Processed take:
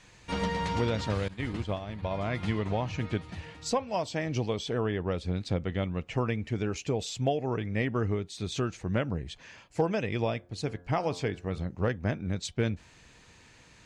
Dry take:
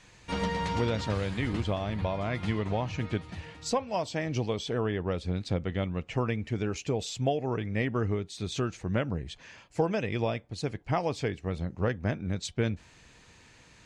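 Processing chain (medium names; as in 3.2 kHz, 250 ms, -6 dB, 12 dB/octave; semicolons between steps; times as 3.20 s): 10.34–11.65 s: de-hum 88.32 Hz, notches 19; hard clipper -16 dBFS, distortion -43 dB; 1.28–2.11 s: expander -25 dBFS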